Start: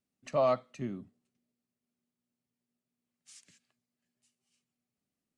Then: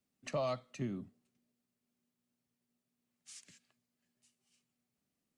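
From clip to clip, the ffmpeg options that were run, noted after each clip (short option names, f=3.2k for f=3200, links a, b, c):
-filter_complex "[0:a]acrossover=split=130|3000[a][b][c];[b]acompressor=threshold=-39dB:ratio=3[d];[a][d][c]amix=inputs=3:normalize=0,volume=2dB"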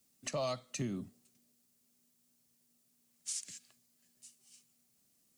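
-af "bass=f=250:g=0,treble=f=4k:g=13,alimiter=level_in=8.5dB:limit=-24dB:level=0:latency=1:release=334,volume=-8.5dB,volume=5dB"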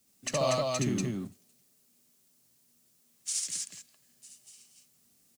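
-filter_complex "[0:a]asplit=2[a][b];[b]aeval=exprs='val(0)*gte(abs(val(0)),0.00668)':c=same,volume=-10dB[c];[a][c]amix=inputs=2:normalize=0,aecho=1:1:69.97|239.1:0.891|0.794,volume=3dB"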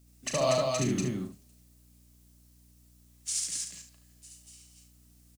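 -af "aecho=1:1:38|73:0.398|0.316,aeval=exprs='val(0)+0.00112*(sin(2*PI*60*n/s)+sin(2*PI*2*60*n/s)/2+sin(2*PI*3*60*n/s)/3+sin(2*PI*4*60*n/s)/4+sin(2*PI*5*60*n/s)/5)':c=same"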